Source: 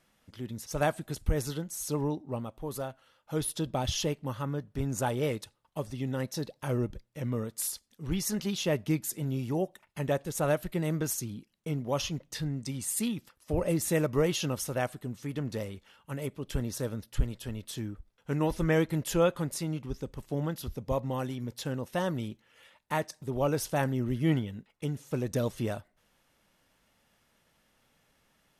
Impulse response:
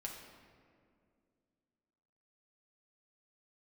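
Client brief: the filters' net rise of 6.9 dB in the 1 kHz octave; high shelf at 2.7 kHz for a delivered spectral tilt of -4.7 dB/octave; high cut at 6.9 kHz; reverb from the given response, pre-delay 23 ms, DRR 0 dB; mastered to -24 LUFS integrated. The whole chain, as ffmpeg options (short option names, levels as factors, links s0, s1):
-filter_complex "[0:a]lowpass=6900,equalizer=f=1000:t=o:g=8,highshelf=f=2700:g=8,asplit=2[s0][s1];[1:a]atrim=start_sample=2205,adelay=23[s2];[s1][s2]afir=irnorm=-1:irlink=0,volume=1.26[s3];[s0][s3]amix=inputs=2:normalize=0,volume=1.5"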